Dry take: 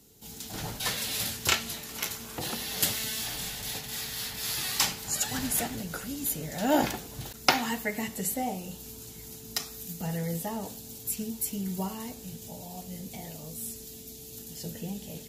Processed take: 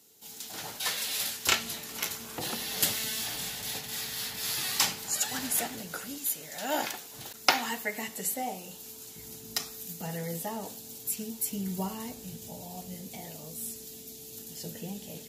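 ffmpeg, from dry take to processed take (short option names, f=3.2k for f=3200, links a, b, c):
-af "asetnsamples=n=441:p=0,asendcmd='1.48 highpass f 150;5.07 highpass f 370;6.18 highpass f 1100;7.14 highpass f 470;9.16 highpass f 120;9.71 highpass f 260;11.51 highpass f 85;12.94 highpass f 190',highpass=f=640:p=1"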